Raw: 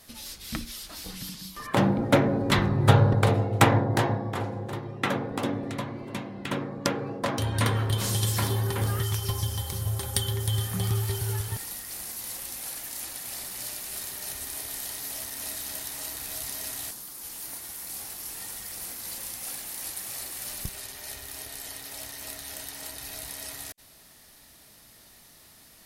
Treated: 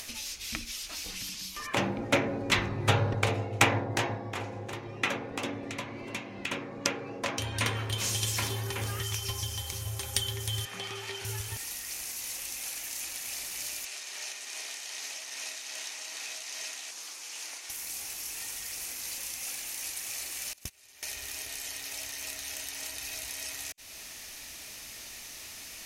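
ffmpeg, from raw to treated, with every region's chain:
-filter_complex "[0:a]asettb=1/sr,asplit=3[s0][s1][s2];[s0]atrim=end=10.654[s3];[s1]atrim=start=10.65:end=11.25,asetpts=PTS-STARTPTS,afade=t=in:d=0.004:c=qsin,afade=t=out:st=0.596:d=0.004:c=qsin,highpass=280,lowpass=2500,aemphasis=mode=production:type=75kf[s4];[s2]atrim=start=11.246[s5];[s3][s4]acrossfade=d=0.004:c1=hsin:c2=qsin[s6];[s6][s5]acrossfade=d=0.004:c1=qsin:c2=hsin,asettb=1/sr,asplit=3[s7][s8][s9];[s7]atrim=end=13.854[s10];[s8]atrim=start=13.85:end=17.7,asetpts=PTS-STARTPTS,afade=t=in:d=0.004:c=qsin,afade=t=out:st=3.846:d=0.004:c=qsin,tremolo=f=2.5:d=0.45,highpass=440,lowpass=6700[s11];[s9]atrim=start=17.696[s12];[s10][s11]acrossfade=d=0.004:c1=hsin:c2=qsin[s13];[s13][s12]acrossfade=d=0.004:c1=qsin:c2=hsin,asettb=1/sr,asplit=3[s14][s15][s16];[s14]atrim=end=20.534[s17];[s15]atrim=start=20.53:end=21.03,asetpts=PTS-STARTPTS,afade=t=in:d=0.004:c=qsin,afade=t=out:st=0.496:d=0.004:c=qsin,highpass=56,agate=range=0.0631:threshold=0.0178:ratio=16:release=100:detection=peak[s18];[s16]atrim=start=21.026[s19];[s17][s18]acrossfade=d=0.004:c1=hsin:c2=qsin[s20];[s20][s19]acrossfade=d=0.004:c1=qsin:c2=hsin,equalizer=f=160:t=o:w=0.67:g=-9,equalizer=f=2500:t=o:w=0.67:g=11,equalizer=f=6300:t=o:w=0.67:g=10,acompressor=mode=upward:threshold=0.0447:ratio=2.5,volume=0.501"

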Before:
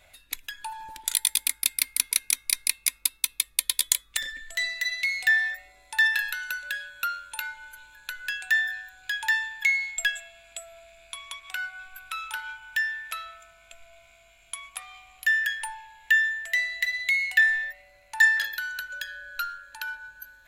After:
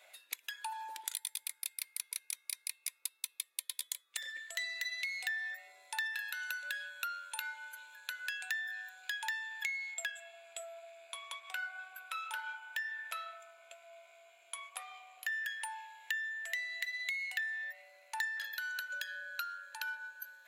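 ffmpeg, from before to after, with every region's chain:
-filter_complex "[0:a]asettb=1/sr,asplit=3[s0][s1][s2];[s0]atrim=end=9.944[s3];[s1]atrim=start=9.94:end=15.32,asetpts=PTS-STARTPTS,afade=t=in:d=0.004:c=qsin,afade=t=out:st=5.376:d=0.004:c=qsin,equalizer=f=520:w=0.55:g=8,bandreject=f=5600:w=26,flanger=delay=5.6:depth=2.1:regen=-75:speed=2:shape=triangular[s4];[s2]atrim=start=15.316[s5];[s3][s4]acrossfade=d=0.004:c1=hsin:c2=qsin[s6];[s6][s5]acrossfade=d=0.004:c1=qsin:c2=hsin,highpass=f=420:w=0.5412,highpass=f=420:w=1.3066,acompressor=threshold=0.0224:ratio=6,volume=0.708"

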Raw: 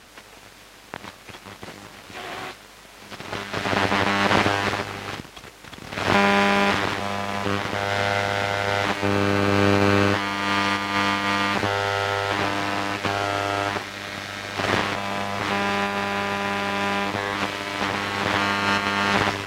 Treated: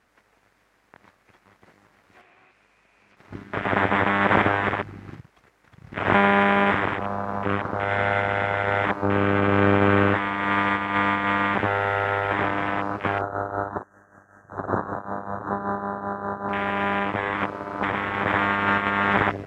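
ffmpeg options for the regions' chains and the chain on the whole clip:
-filter_complex "[0:a]asettb=1/sr,asplit=3[s0][s1][s2];[s0]atrim=end=2.214[s3];[s1]atrim=start=2.21:end=3.17,asetpts=PTS-STARTPTS,afade=t=in:d=0.004:c=qsin,afade=t=out:st=0.956:d=0.004:c=qsin,lowpass=9800,equalizer=f=2500:t=o:w=0.29:g=10.5,acompressor=threshold=0.0158:ratio=5:attack=3.2:release=140:knee=1:detection=peak[s4];[s2]atrim=start=3.166[s5];[s3][s4]acrossfade=d=0.004:c1=hsin:c2=qsin[s6];[s6][s5]acrossfade=d=0.004:c1=qsin:c2=hsin,asettb=1/sr,asplit=3[s7][s8][s9];[s7]atrim=end=13.214[s10];[s8]atrim=start=13.21:end=16.49,asetpts=PTS-STARTPTS,afade=t=in:d=0.004:c=qsin,afade=t=out:st=3.276:d=0.004:c=qsin,acrossover=split=8200[s11][s12];[s12]acompressor=threshold=0.00112:ratio=4:attack=1:release=60[s13];[s11][s13]amix=inputs=2:normalize=0,tremolo=f=5.2:d=0.59,asuperstop=centerf=3300:order=20:qfactor=0.76[s14];[s9]atrim=start=16.486[s15];[s10][s14]acrossfade=d=0.004:c1=hsin:c2=qsin[s16];[s16][s15]acrossfade=d=0.004:c1=qsin:c2=hsin,highshelf=f=2500:t=q:w=1.5:g=-6.5,afwtdn=0.0562"

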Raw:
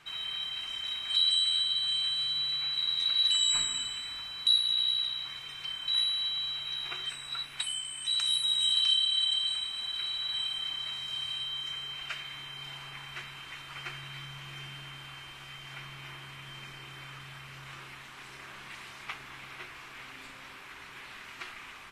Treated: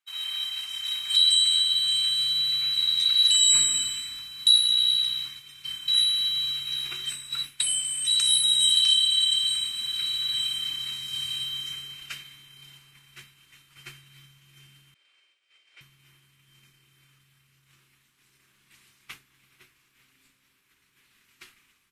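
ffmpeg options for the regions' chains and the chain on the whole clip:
-filter_complex "[0:a]asettb=1/sr,asplit=3[s0][s1][s2];[s0]atrim=end=14.944[s3];[s1]atrim=start=14.94:end=15.81,asetpts=PTS-STARTPTS,afade=t=in:d=0.004:c=qsin,afade=t=out:st=0.866:d=0.004:c=qsin,agate=range=0.0224:threshold=0.00631:ratio=3:release=100:detection=peak,highpass=f=390:w=0.5412,highpass=f=390:w=1.3066,equalizer=f=560:t=q:w=4:g=9,equalizer=f=1000:t=q:w=4:g=-3,equalizer=f=2300:t=q:w=4:g=5,equalizer=f=6500:t=q:w=4:g=-6,lowpass=f=7500:w=0.5412,lowpass=f=7500:w=1.3066,asplit=2[s4][s5];[s5]adelay=48,volume=0.266[s6];[s4][s6]amix=inputs=2:normalize=0,atrim=end_sample=38367[s7];[s2]atrim=start=15.806[s8];[s3][s7]acrossfade=d=0.004:c1=hsin:c2=qsin[s9];[s9][s8]acrossfade=d=0.004:c1=qsin:c2=hsin,aemphasis=mode=production:type=riaa,agate=range=0.0224:threshold=0.0355:ratio=3:detection=peak,asubboost=boost=11.5:cutoff=210"

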